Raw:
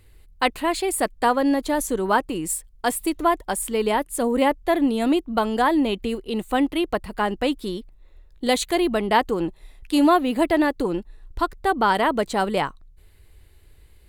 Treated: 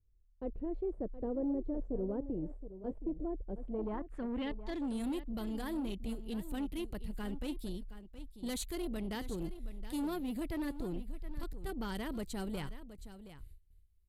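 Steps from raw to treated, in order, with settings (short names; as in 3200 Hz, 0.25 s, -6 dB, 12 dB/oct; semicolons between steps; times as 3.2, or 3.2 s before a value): gate with hold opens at -40 dBFS; passive tone stack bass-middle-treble 10-0-1; in parallel at -3 dB: limiter -36.5 dBFS, peak gain reduction 8.5 dB; on the sum: soft clip -35.5 dBFS, distortion -14 dB; low-pass sweep 520 Hz -> 13000 Hz, 3.6–5.11; on a send: echo 0.72 s -13 dB; on the sum: gain +3 dB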